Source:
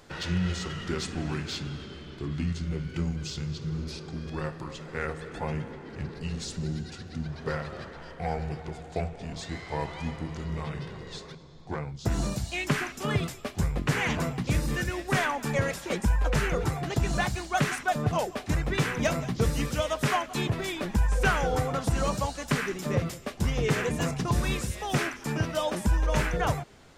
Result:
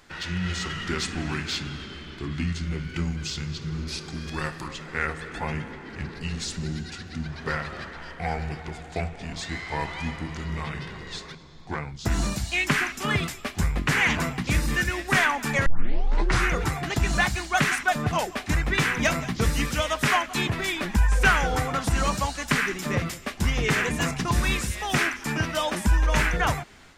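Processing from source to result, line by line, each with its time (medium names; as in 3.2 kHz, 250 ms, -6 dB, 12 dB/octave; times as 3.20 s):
3.91–4.67 s: treble shelf 6.5 kHz -> 4 kHz +10.5 dB
15.66 s: tape start 0.86 s
whole clip: ten-band graphic EQ 125 Hz -6 dB, 500 Hz -7 dB, 2 kHz +4 dB; level rider gain up to 5 dB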